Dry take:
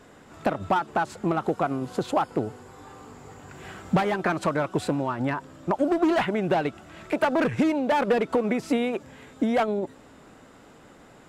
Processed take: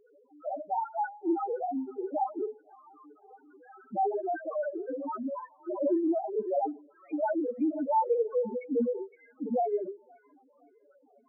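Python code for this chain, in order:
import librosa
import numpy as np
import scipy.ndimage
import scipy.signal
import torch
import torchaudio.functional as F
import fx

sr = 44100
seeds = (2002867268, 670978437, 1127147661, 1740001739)

p1 = scipy.signal.sosfilt(scipy.signal.butter(4, 270.0, 'highpass', fs=sr, output='sos'), x)
p2 = fx.rev_schroeder(p1, sr, rt60_s=0.54, comb_ms=30, drr_db=-1.5)
p3 = fx.dereverb_blind(p2, sr, rt60_s=1.1)
p4 = fx.quant_float(p3, sr, bits=2)
p5 = p3 + F.gain(torch.from_numpy(p4), -9.0).numpy()
p6 = fx.spec_topn(p5, sr, count=1)
y = p6 + fx.echo_wet_highpass(p6, sr, ms=514, feedback_pct=42, hz=2300.0, wet_db=-8.0, dry=0)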